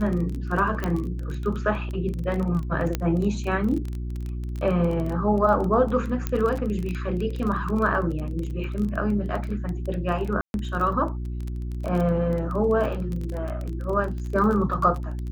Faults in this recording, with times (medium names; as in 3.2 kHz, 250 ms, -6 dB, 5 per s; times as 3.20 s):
crackle 22 per s -28 dBFS
hum 60 Hz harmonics 6 -30 dBFS
0.84 s: pop -13 dBFS
2.95 s: pop -11 dBFS
6.27 s: pop -12 dBFS
10.41–10.54 s: dropout 131 ms